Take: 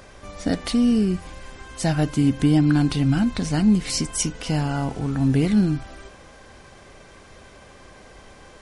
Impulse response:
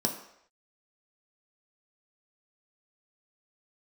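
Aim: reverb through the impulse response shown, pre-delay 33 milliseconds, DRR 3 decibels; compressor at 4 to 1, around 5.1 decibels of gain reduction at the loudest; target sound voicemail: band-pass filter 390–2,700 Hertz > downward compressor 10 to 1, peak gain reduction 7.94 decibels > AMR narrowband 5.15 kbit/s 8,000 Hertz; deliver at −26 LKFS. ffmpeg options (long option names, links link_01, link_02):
-filter_complex "[0:a]acompressor=threshold=-19dB:ratio=4,asplit=2[link_01][link_02];[1:a]atrim=start_sample=2205,adelay=33[link_03];[link_02][link_03]afir=irnorm=-1:irlink=0,volume=-10dB[link_04];[link_01][link_04]amix=inputs=2:normalize=0,highpass=390,lowpass=2700,acompressor=threshold=-25dB:ratio=10,volume=6dB" -ar 8000 -c:a libopencore_amrnb -b:a 5150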